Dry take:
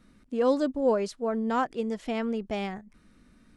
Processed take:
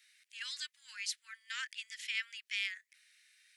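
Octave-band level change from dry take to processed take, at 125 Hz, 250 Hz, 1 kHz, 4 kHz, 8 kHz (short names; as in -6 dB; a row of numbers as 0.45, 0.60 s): n/a, under -40 dB, -25.5 dB, +5.5 dB, +5.5 dB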